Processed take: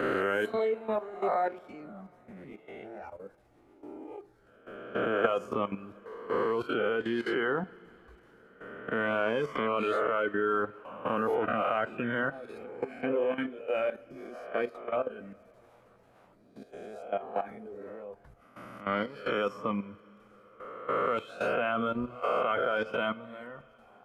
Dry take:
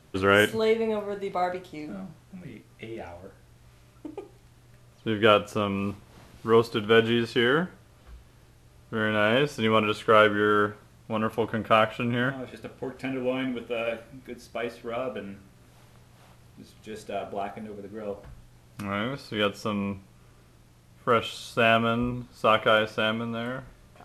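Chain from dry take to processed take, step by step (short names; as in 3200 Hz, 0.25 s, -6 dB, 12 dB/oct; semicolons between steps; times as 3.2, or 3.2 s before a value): spectral swells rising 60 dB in 1.13 s; reverb removal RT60 0.91 s; dynamic EQ 130 Hz, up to +4 dB, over -49 dBFS, Q 4.5; level quantiser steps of 15 dB; three-band isolator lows -13 dB, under 210 Hz, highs -14 dB, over 2000 Hz; two-slope reverb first 0.27 s, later 4.4 s, from -19 dB, DRR 13.5 dB; gain +2.5 dB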